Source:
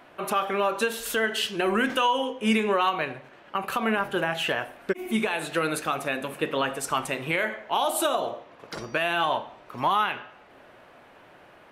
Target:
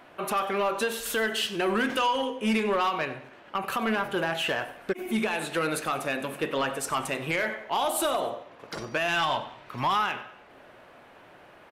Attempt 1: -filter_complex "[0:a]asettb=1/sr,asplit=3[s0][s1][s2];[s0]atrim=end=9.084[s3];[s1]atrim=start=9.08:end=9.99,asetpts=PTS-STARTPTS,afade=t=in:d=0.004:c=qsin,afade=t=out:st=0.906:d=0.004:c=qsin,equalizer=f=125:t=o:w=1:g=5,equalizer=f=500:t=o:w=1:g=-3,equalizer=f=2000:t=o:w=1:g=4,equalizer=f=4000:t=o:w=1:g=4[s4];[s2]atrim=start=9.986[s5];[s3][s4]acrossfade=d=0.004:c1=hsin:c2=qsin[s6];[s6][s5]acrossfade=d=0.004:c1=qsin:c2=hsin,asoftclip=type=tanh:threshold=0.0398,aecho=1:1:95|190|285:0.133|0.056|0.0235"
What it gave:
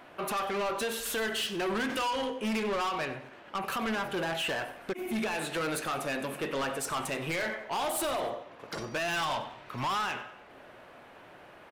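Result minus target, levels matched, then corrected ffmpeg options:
saturation: distortion +9 dB
-filter_complex "[0:a]asettb=1/sr,asplit=3[s0][s1][s2];[s0]atrim=end=9.084[s3];[s1]atrim=start=9.08:end=9.99,asetpts=PTS-STARTPTS,afade=t=in:d=0.004:c=qsin,afade=t=out:st=0.906:d=0.004:c=qsin,equalizer=f=125:t=o:w=1:g=5,equalizer=f=500:t=o:w=1:g=-3,equalizer=f=2000:t=o:w=1:g=4,equalizer=f=4000:t=o:w=1:g=4[s4];[s2]atrim=start=9.986[s5];[s3][s4]acrossfade=d=0.004:c1=hsin:c2=qsin[s6];[s6][s5]acrossfade=d=0.004:c1=qsin:c2=hsin,asoftclip=type=tanh:threshold=0.119,aecho=1:1:95|190|285:0.133|0.056|0.0235"

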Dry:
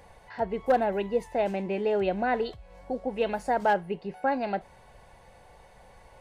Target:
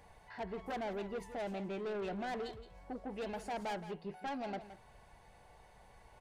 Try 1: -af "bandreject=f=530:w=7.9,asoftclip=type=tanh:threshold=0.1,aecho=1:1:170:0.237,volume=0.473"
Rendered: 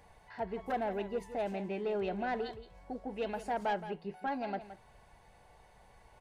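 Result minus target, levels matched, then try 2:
saturation: distortion -9 dB
-af "bandreject=f=530:w=7.9,asoftclip=type=tanh:threshold=0.0316,aecho=1:1:170:0.237,volume=0.473"

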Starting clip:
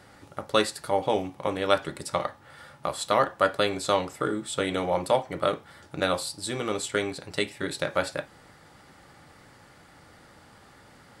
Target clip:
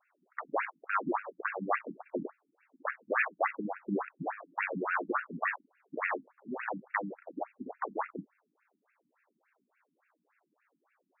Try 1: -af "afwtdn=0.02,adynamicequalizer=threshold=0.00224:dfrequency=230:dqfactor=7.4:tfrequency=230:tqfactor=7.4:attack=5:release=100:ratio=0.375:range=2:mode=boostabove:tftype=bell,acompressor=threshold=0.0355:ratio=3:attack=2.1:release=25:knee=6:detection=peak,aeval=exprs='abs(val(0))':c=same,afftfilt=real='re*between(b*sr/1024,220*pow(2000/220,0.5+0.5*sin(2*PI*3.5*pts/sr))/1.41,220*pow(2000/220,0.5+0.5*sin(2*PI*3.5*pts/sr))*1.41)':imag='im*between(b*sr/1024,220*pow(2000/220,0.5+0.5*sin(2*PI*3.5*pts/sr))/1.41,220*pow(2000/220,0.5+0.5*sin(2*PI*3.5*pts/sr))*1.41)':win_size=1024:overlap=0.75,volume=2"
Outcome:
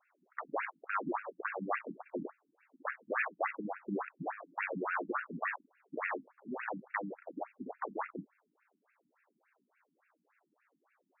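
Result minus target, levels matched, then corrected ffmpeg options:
compression: peak gain reduction +4.5 dB
-af "afwtdn=0.02,adynamicequalizer=threshold=0.00224:dfrequency=230:dqfactor=7.4:tfrequency=230:tqfactor=7.4:attack=5:release=100:ratio=0.375:range=2:mode=boostabove:tftype=bell,acompressor=threshold=0.0794:ratio=3:attack=2.1:release=25:knee=6:detection=peak,aeval=exprs='abs(val(0))':c=same,afftfilt=real='re*between(b*sr/1024,220*pow(2000/220,0.5+0.5*sin(2*PI*3.5*pts/sr))/1.41,220*pow(2000/220,0.5+0.5*sin(2*PI*3.5*pts/sr))*1.41)':imag='im*between(b*sr/1024,220*pow(2000/220,0.5+0.5*sin(2*PI*3.5*pts/sr))/1.41,220*pow(2000/220,0.5+0.5*sin(2*PI*3.5*pts/sr))*1.41)':win_size=1024:overlap=0.75,volume=2"

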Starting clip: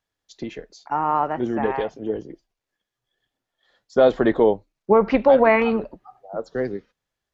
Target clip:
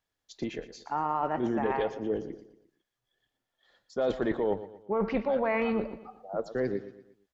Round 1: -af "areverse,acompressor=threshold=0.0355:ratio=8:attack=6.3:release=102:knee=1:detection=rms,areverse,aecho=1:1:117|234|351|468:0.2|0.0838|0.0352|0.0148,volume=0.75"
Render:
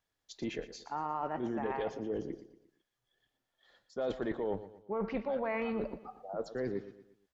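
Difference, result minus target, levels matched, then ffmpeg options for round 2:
compression: peak gain reduction +6.5 dB
-af "areverse,acompressor=threshold=0.0841:ratio=8:attack=6.3:release=102:knee=1:detection=rms,areverse,aecho=1:1:117|234|351|468:0.2|0.0838|0.0352|0.0148,volume=0.75"

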